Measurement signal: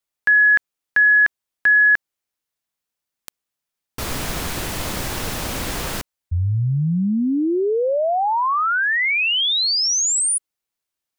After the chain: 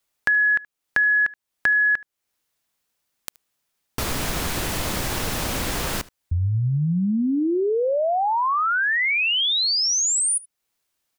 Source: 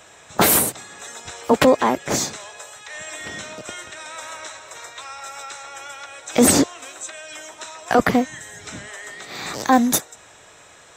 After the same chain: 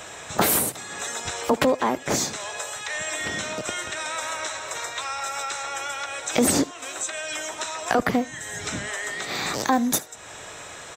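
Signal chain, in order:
downward compressor 2 to 1, threshold −37 dBFS
single-tap delay 75 ms −22 dB
level +8 dB

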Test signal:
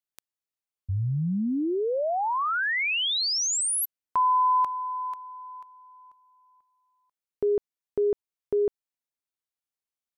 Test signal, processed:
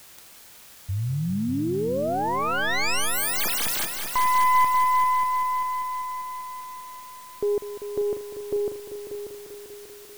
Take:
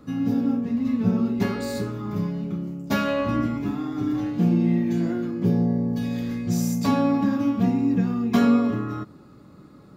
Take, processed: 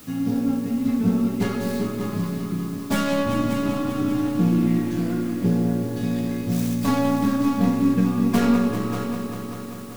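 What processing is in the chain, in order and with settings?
stylus tracing distortion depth 0.29 ms
echo machine with several playback heads 196 ms, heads all three, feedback 58%, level −12 dB
bit-depth reduction 8 bits, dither triangular

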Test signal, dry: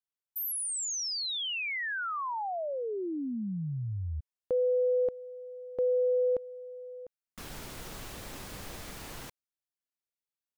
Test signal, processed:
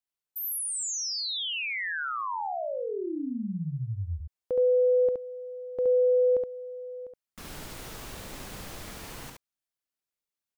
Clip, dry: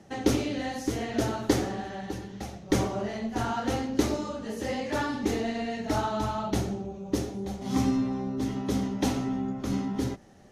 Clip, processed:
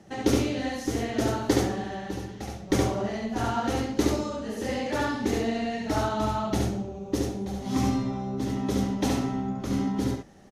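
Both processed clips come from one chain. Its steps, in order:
single-tap delay 70 ms −3 dB

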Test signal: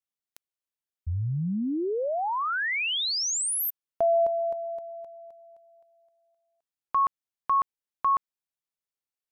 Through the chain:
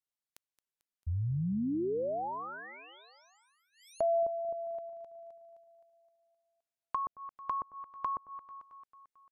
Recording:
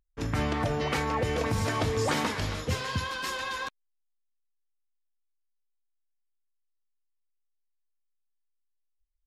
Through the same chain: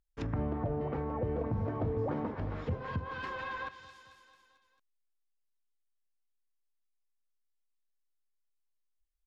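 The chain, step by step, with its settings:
repeating echo 222 ms, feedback 58%, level −16.5 dB
treble cut that deepens with the level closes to 720 Hz, closed at −26 dBFS
level −4 dB

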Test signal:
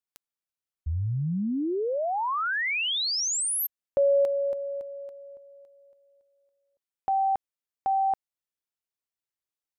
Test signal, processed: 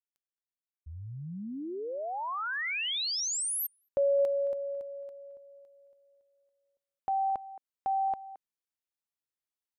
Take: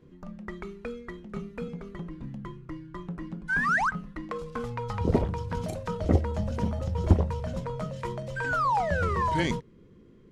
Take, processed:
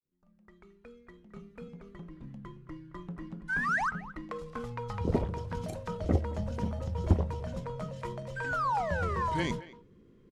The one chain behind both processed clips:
fade in at the beginning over 2.99 s
far-end echo of a speakerphone 220 ms, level −16 dB
level −4.5 dB

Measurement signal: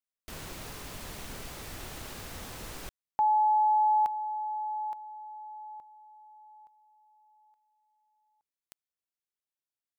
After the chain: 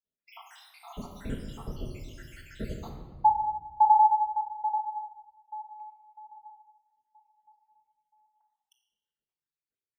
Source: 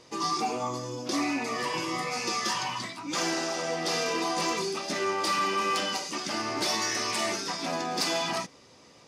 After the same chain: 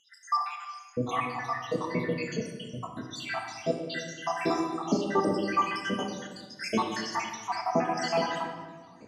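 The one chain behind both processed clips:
time-frequency cells dropped at random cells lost 84%
high-pass filter 220 Hz 6 dB per octave
spectral tilt −4 dB per octave
rectangular room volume 1,300 cubic metres, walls mixed, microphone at 1.6 metres
level +5.5 dB

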